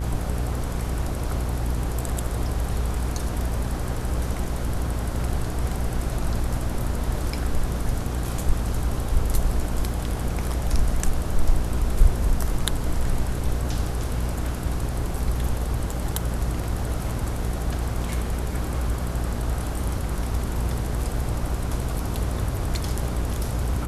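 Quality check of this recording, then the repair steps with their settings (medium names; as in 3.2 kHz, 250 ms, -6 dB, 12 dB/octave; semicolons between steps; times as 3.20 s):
buzz 60 Hz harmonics 27 -28 dBFS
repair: de-hum 60 Hz, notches 27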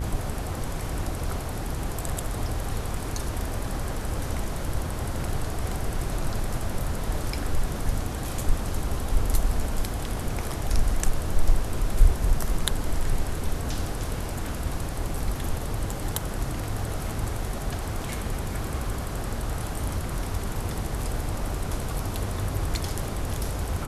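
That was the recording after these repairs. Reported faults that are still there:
nothing left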